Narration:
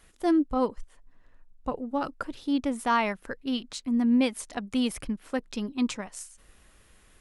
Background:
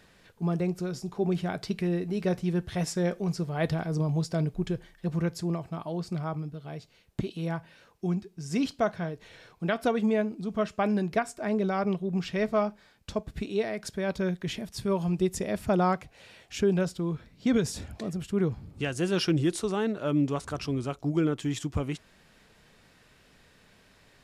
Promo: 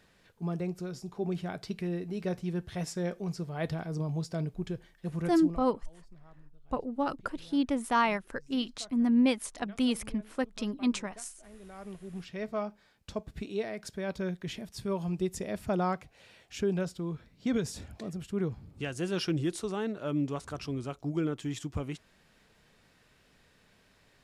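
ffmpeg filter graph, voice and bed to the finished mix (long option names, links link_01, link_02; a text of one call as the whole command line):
ffmpeg -i stem1.wav -i stem2.wav -filter_complex "[0:a]adelay=5050,volume=-1.5dB[link_01];[1:a]volume=14.5dB,afade=type=out:start_time=5.39:duration=0.31:silence=0.105925,afade=type=in:start_time=11.59:duration=1.43:silence=0.1[link_02];[link_01][link_02]amix=inputs=2:normalize=0" out.wav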